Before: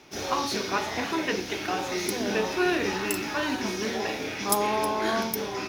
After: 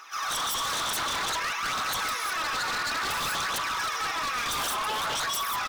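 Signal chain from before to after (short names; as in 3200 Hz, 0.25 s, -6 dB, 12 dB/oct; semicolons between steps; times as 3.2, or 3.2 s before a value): notch 4500 Hz; comb 6.1 ms, depth 61%; compressor 2.5:1, threshold -32 dBFS, peak gain reduction 10.5 dB; non-linear reverb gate 0.22 s rising, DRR -4 dB; phaser 0.56 Hz, delay 4.5 ms, feedback 60%; resonant high-pass 1200 Hz, resonance Q 14; on a send: reverse echo 0.135 s -17.5 dB; on the sum: wavefolder -21.5 dBFS; gain -3 dB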